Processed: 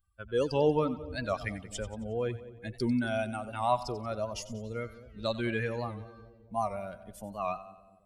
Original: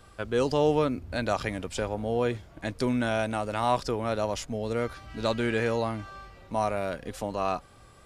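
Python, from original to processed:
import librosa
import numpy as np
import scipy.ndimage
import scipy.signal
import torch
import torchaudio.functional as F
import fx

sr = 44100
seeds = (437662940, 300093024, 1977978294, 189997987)

y = fx.bin_expand(x, sr, power=2.0)
y = fx.echo_split(y, sr, split_hz=610.0, low_ms=216, high_ms=91, feedback_pct=52, wet_db=-15.0)
y = fx.record_warp(y, sr, rpm=78.0, depth_cents=100.0)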